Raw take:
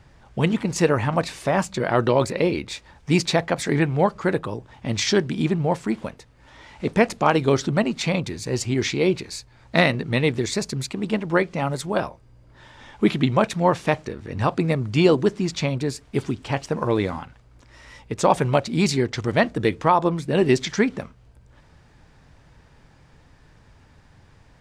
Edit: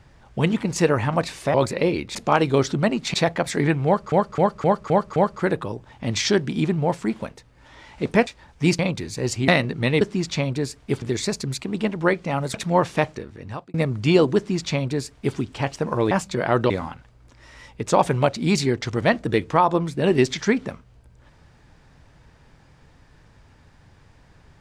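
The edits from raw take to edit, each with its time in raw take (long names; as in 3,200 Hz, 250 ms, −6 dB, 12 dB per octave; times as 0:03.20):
0:01.54–0:02.13: move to 0:17.01
0:02.74–0:03.26: swap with 0:07.09–0:08.08
0:03.98–0:04.24: repeat, 6 plays
0:08.77–0:09.78: remove
0:11.83–0:13.44: remove
0:13.95–0:14.64: fade out
0:15.26–0:16.27: duplicate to 0:10.31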